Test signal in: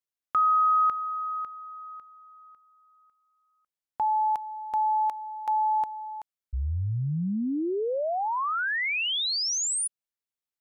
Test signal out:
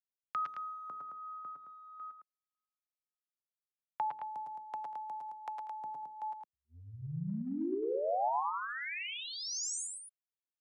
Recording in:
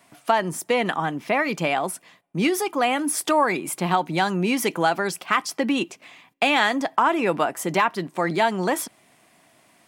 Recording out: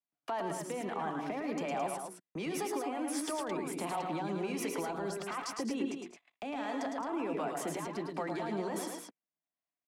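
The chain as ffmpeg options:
-filter_complex "[0:a]highpass=f=130:w=0.5412,highpass=f=130:w=1.3066,bandreject=f=60:t=h:w=6,bandreject=f=120:t=h:w=6,bandreject=f=180:t=h:w=6,bandreject=f=240:t=h:w=6,bandreject=f=300:t=h:w=6,bandreject=f=360:t=h:w=6,bandreject=f=420:t=h:w=6,bandreject=f=480:t=h:w=6,agate=range=-42dB:threshold=-45dB:ratio=16:release=35:detection=peak,aemphasis=mode=reproduction:type=50fm,acompressor=threshold=-21dB:ratio=6:attack=0.6:release=67:knee=6:detection=peak,alimiter=limit=-22dB:level=0:latency=1,acrossover=split=250|1000|5900[a][b][c][d];[a]acompressor=threshold=-47dB:ratio=4[e];[b]acompressor=threshold=-34dB:ratio=4[f];[c]acompressor=threshold=-46dB:ratio=4[g];[d]acompressor=threshold=-41dB:ratio=4[h];[e][f][g][h]amix=inputs=4:normalize=0,acrossover=split=420[i][j];[i]aeval=exprs='val(0)*(1-0.5/2+0.5/2*cos(2*PI*1.4*n/s))':c=same[k];[j]aeval=exprs='val(0)*(1-0.5/2-0.5/2*cos(2*PI*1.4*n/s))':c=same[l];[k][l]amix=inputs=2:normalize=0,asplit=2[m][n];[n]aecho=0:1:106|113|192|217:0.473|0.447|0.133|0.447[o];[m][o]amix=inputs=2:normalize=0"

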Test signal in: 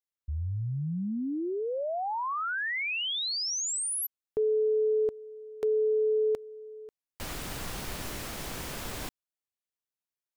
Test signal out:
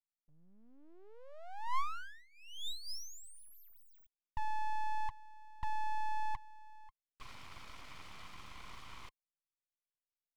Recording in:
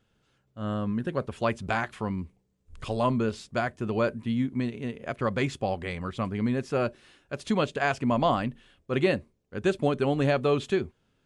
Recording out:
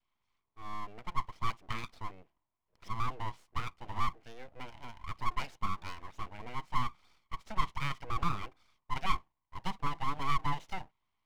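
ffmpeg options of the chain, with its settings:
-filter_complex "[0:a]adynamicequalizer=threshold=0.00708:dfrequency=720:dqfactor=2.2:tfrequency=720:tqfactor=2.2:attack=5:release=100:ratio=0.375:range=2.5:mode=boostabove:tftype=bell,asplit=3[a][b][c];[a]bandpass=f=530:t=q:w=8,volume=0dB[d];[b]bandpass=f=1.84k:t=q:w=8,volume=-6dB[e];[c]bandpass=f=2.48k:t=q:w=8,volume=-9dB[f];[d][e][f]amix=inputs=3:normalize=0,aeval=exprs='abs(val(0))':c=same,volume=3dB"

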